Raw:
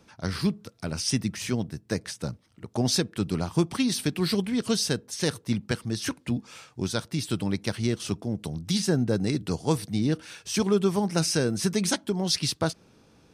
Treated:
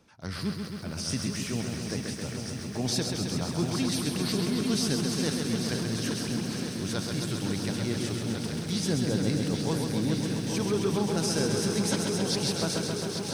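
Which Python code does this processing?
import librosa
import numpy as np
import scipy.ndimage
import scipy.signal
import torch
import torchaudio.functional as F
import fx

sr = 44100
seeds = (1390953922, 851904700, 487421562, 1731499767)

y = fx.echo_swing(x, sr, ms=1397, ratio=1.5, feedback_pct=64, wet_db=-8.5)
y = fx.transient(y, sr, attack_db=-4, sustain_db=2)
y = fx.echo_crushed(y, sr, ms=133, feedback_pct=80, bits=9, wet_db=-5)
y = y * 10.0 ** (-4.5 / 20.0)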